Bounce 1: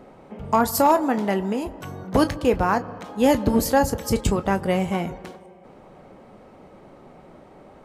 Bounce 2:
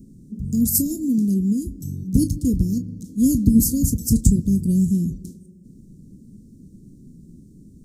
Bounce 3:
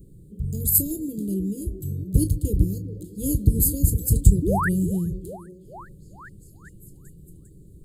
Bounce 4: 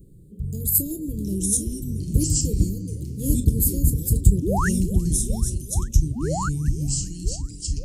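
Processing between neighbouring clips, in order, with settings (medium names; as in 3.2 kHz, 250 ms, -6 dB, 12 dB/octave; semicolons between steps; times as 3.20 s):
inverse Chebyshev band-stop 770–2200 Hz, stop band 70 dB; trim +8 dB
static phaser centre 1.2 kHz, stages 8; painted sound rise, 4.42–4.69 s, 260–2000 Hz -28 dBFS; repeats whose band climbs or falls 400 ms, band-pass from 320 Hz, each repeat 0.7 oct, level -9 dB; trim +4 dB
ever faster or slower copies 583 ms, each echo -4 st, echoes 2; trim -1 dB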